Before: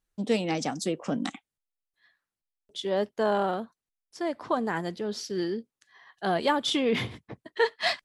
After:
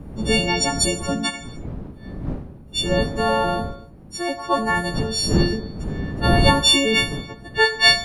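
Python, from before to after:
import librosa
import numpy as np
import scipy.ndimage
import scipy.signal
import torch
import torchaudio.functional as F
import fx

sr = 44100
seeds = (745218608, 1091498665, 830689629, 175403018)

y = fx.freq_snap(x, sr, grid_st=4)
y = fx.dmg_wind(y, sr, seeds[0], corner_hz=200.0, level_db=-32.0)
y = fx.rev_gated(y, sr, seeds[1], gate_ms=320, shape='falling', drr_db=8.0)
y = y * librosa.db_to_amplitude(5.0)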